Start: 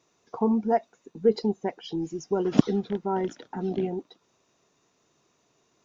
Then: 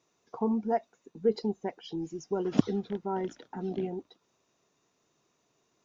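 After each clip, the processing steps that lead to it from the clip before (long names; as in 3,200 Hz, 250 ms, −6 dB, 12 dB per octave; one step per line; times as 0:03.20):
mains-hum notches 50/100 Hz
level −5 dB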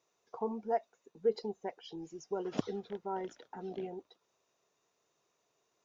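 low shelf with overshoot 360 Hz −6 dB, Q 1.5
level −4.5 dB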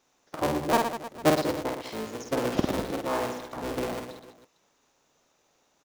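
sub-harmonics by changed cycles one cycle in 3, inverted
on a send: reverse bouncing-ball delay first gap 50 ms, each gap 1.3×, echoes 5
on the sum: level +7.5 dB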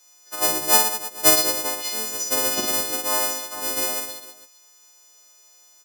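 every partial snapped to a pitch grid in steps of 3 semitones
bass and treble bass −9 dB, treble +10 dB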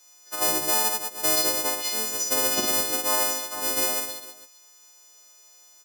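brickwall limiter −12 dBFS, peak gain reduction 10 dB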